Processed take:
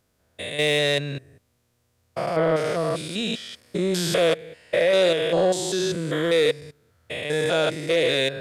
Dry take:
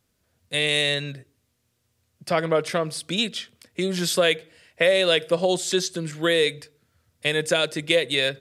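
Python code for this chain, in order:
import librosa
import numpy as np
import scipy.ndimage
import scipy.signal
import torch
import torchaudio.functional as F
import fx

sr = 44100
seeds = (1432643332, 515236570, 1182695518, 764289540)

y = fx.spec_steps(x, sr, hold_ms=200)
y = fx.curve_eq(y, sr, hz=(260.0, 680.0, 2900.0), db=(0, 4, -2))
y = 10.0 ** (-15.5 / 20.0) * np.tanh(y / 10.0 ** (-15.5 / 20.0))
y = F.gain(torch.from_numpy(y), 4.0).numpy()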